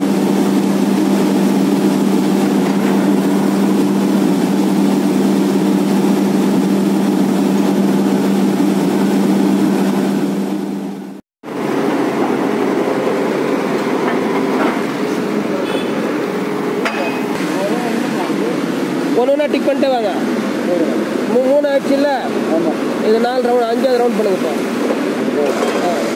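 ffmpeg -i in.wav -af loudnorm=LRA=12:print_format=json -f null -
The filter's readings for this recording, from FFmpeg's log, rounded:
"input_i" : "-15.3",
"input_tp" : "-1.7",
"input_lra" : "3.4",
"input_thresh" : "-25.4",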